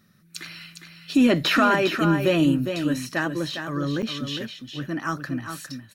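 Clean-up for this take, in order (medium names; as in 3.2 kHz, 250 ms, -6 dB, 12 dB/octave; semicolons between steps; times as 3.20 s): clip repair -10 dBFS; interpolate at 4.02 s, 7 ms; inverse comb 407 ms -7.5 dB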